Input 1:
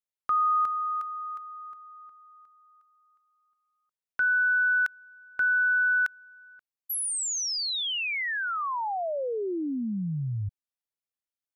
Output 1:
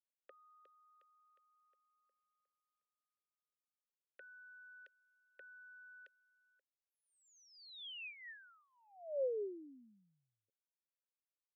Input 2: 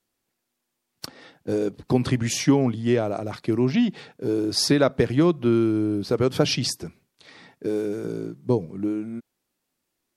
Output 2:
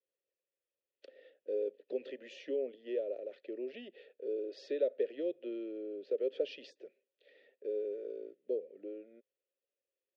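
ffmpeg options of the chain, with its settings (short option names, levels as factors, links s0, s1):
-filter_complex "[0:a]acrossover=split=500|3200[s0][s1][s2];[s1]acompressor=threshold=0.00794:ratio=2:attack=9.8:release=34:knee=2.83:detection=peak[s3];[s0][s3][s2]amix=inputs=3:normalize=0,asplit=3[s4][s5][s6];[s4]bandpass=f=530:t=q:w=8,volume=1[s7];[s5]bandpass=f=1840:t=q:w=8,volume=0.501[s8];[s6]bandpass=f=2480:t=q:w=8,volume=0.355[s9];[s7][s8][s9]amix=inputs=3:normalize=0,highpass=f=260:w=0.5412,highpass=f=260:w=1.3066,equalizer=f=410:t=q:w=4:g=9,equalizer=f=590:t=q:w=4:g=5,equalizer=f=840:t=q:w=4:g=-7,equalizer=f=1700:t=q:w=4:g=-5,equalizer=f=3300:t=q:w=4:g=6,equalizer=f=5400:t=q:w=4:g=-5,lowpass=f=6100:w=0.5412,lowpass=f=6100:w=1.3066,volume=0.501"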